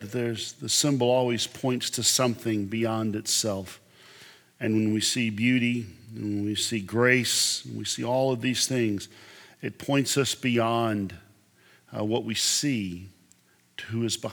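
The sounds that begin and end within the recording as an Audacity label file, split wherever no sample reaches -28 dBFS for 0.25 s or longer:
4.610000	5.820000	sound
6.180000	9.030000	sound
9.640000	11.100000	sound
11.940000	12.950000	sound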